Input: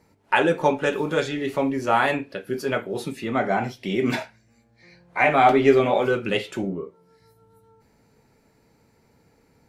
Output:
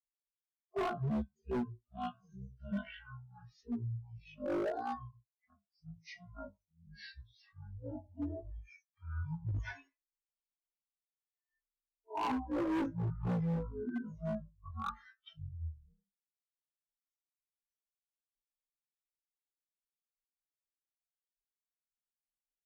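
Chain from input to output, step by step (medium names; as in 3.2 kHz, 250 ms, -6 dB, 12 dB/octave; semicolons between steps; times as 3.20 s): expander on every frequency bin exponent 3; speed mistake 78 rpm record played at 33 rpm; overload inside the chain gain 24.5 dB; trim -7 dB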